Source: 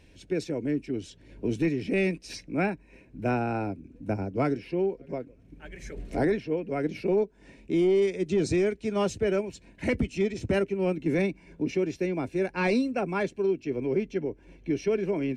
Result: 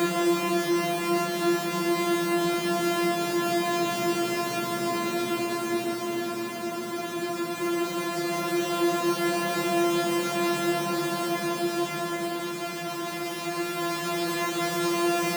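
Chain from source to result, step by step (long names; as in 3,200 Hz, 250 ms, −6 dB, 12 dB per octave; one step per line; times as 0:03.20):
samples sorted by size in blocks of 128 samples
high-pass filter 170 Hz 24 dB per octave
in parallel at +0.5 dB: compressor whose output falls as the input rises −30 dBFS, ratio −1
on the sum: extreme stretch with random phases 28×, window 0.25 s, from 0:12.06
level −3.5 dB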